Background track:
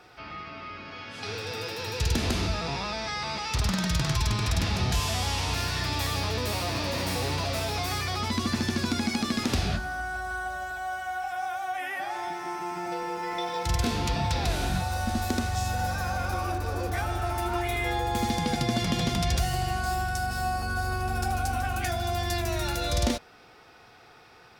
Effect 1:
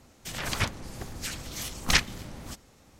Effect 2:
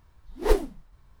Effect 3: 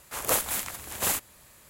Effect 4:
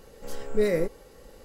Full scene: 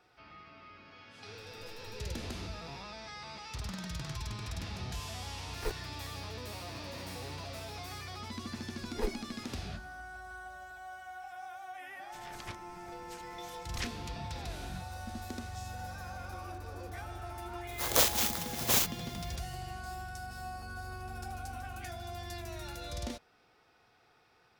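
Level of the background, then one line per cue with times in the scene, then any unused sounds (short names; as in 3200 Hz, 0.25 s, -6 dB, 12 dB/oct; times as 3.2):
background track -13.5 dB
1.38 add 4 -12.5 dB + compressor, threshold -34 dBFS
5.16 add 2 -16 dB + sample gate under -19 dBFS
8.53 add 2 -13.5 dB
11.87 add 1 -17 dB
17.67 add 3 + FFT order left unsorted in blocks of 16 samples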